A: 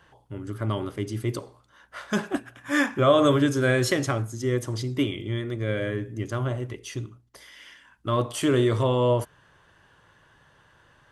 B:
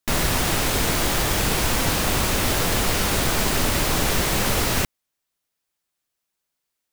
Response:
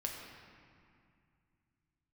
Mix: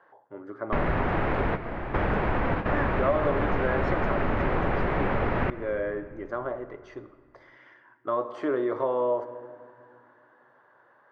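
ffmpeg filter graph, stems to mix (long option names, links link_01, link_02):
-filter_complex "[0:a]highpass=460,highshelf=frequency=2600:gain=-12,aexciter=amount=14.4:drive=4.9:freq=4300,volume=-0.5dB,asplit=3[link_01][link_02][link_03];[link_02]volume=-9.5dB[link_04];[1:a]adelay=650,volume=0.5dB,asplit=2[link_05][link_06];[link_06]volume=-13.5dB[link_07];[link_03]apad=whole_len=334145[link_08];[link_05][link_08]sidechaingate=range=-33dB:threshold=-49dB:ratio=16:detection=peak[link_09];[2:a]atrim=start_sample=2205[link_10];[link_04][link_07]amix=inputs=2:normalize=0[link_11];[link_11][link_10]afir=irnorm=-1:irlink=0[link_12];[link_01][link_09][link_12]amix=inputs=3:normalize=0,lowpass=frequency=2000:width=0.5412,lowpass=frequency=2000:width=1.3066,equalizer=frequency=600:width_type=o:width=1.7:gain=3,acompressor=threshold=-24dB:ratio=2.5"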